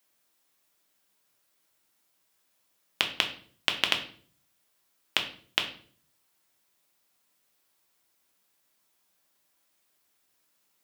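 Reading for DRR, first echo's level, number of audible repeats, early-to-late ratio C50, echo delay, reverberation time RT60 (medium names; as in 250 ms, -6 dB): 3.5 dB, no echo, no echo, 10.5 dB, no echo, 0.50 s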